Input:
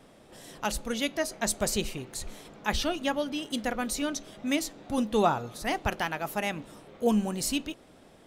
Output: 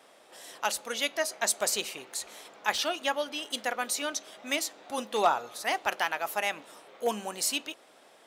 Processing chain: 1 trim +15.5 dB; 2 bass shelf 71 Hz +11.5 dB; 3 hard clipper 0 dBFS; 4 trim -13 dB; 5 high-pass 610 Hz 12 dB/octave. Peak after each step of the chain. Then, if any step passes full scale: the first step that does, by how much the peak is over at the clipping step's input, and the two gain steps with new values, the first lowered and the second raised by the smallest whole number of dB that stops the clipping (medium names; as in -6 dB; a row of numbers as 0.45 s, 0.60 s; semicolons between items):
+4.5 dBFS, +5.5 dBFS, 0.0 dBFS, -13.0 dBFS, -10.5 dBFS; step 1, 5.5 dB; step 1 +9.5 dB, step 4 -7 dB